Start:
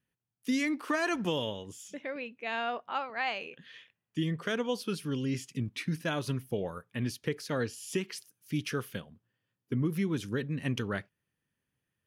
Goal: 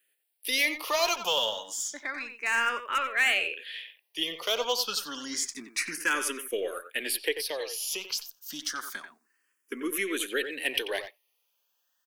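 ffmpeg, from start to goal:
ffmpeg -i in.wav -filter_complex "[0:a]highpass=frequency=330:width=0.5412,highpass=frequency=330:width=1.3066,tiltshelf=frequency=780:gain=-5.5,asplit=3[link_01][link_02][link_03];[link_01]afade=type=out:start_time=7.31:duration=0.02[link_04];[link_02]acompressor=threshold=-37dB:ratio=3,afade=type=in:start_time=7.31:duration=0.02,afade=type=out:start_time=9.76:duration=0.02[link_05];[link_03]afade=type=in:start_time=9.76:duration=0.02[link_06];[link_04][link_05][link_06]amix=inputs=3:normalize=0,asoftclip=type=hard:threshold=-23.5dB,crystalizer=i=1:c=0,aeval=exprs='0.126*(cos(1*acos(clip(val(0)/0.126,-1,1)))-cos(1*PI/2))+0.00398*(cos(2*acos(clip(val(0)/0.126,-1,1)))-cos(2*PI/2))+0.00158*(cos(8*acos(clip(val(0)/0.126,-1,1)))-cos(8*PI/2))':channel_layout=same,asplit=2[link_07][link_08];[link_08]adelay=90,highpass=300,lowpass=3400,asoftclip=type=hard:threshold=-28dB,volume=-8dB[link_09];[link_07][link_09]amix=inputs=2:normalize=0,asplit=2[link_10][link_11];[link_11]afreqshift=0.29[link_12];[link_10][link_12]amix=inputs=2:normalize=1,volume=7.5dB" out.wav

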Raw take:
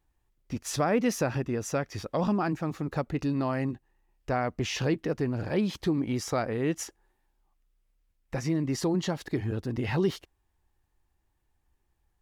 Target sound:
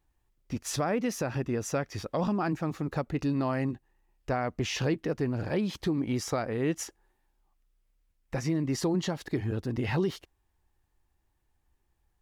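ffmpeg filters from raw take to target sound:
ffmpeg -i in.wav -af "alimiter=limit=-19dB:level=0:latency=1:release=230" out.wav

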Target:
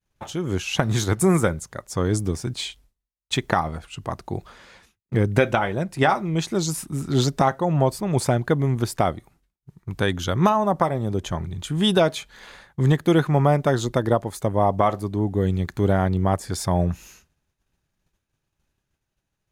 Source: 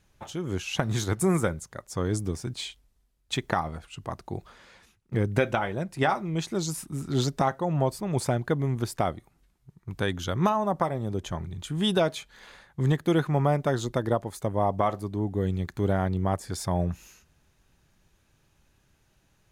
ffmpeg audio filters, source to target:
ffmpeg -i in.wav -af "agate=range=-33dB:threshold=-53dB:ratio=3:detection=peak,volume=5.5dB" out.wav

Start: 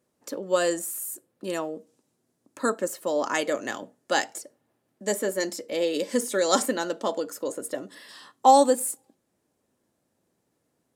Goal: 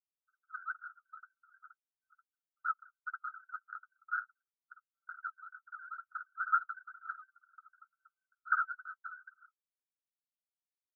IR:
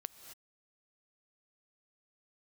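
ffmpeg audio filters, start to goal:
-filter_complex "[0:a]aecho=1:1:587:0.376,acrusher=samples=39:mix=1:aa=0.000001:lfo=1:lforange=62.4:lforate=2.1,asuperpass=centerf=1400:order=12:qfactor=4.4,asettb=1/sr,asplit=3[link_01][link_02][link_03];[link_01]atrim=end=6.204[link_04];[link_02]atrim=start=6.2:end=8.55,asetpts=PTS-STARTPTS,afade=type=in:duration=0.004:curve=qsin,afade=type=out:start_time=2.346:duration=0.004:curve=qsin,asplit=2[link_05][link_06];[link_06]adelay=15,volume=-8dB[link_07];[link_05][link_07]amix=inputs=2:normalize=0,atrim=end_sample=103635[link_08];[link_03]atrim=start=8.546[link_09];[link_04][link_08]acrossfade=duration=0.004:curve1=hsin:curve2=qsin[link_10];[link_10][link_09]acrossfade=duration=0.004:curve1=qsin:curve2=hsin,anlmdn=2.51,flanger=delay=6.6:depth=2.9:regen=-29:speed=0.41:shape=sinusoidal,volume=4dB"

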